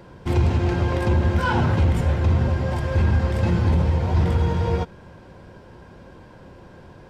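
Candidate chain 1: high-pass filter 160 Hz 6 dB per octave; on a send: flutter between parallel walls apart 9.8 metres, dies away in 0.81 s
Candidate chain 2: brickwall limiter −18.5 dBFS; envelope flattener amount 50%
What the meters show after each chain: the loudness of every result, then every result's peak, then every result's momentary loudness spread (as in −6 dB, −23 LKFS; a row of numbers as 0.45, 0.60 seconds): −23.5, −26.5 LKFS; −7.5, −15.5 dBFS; 5, 10 LU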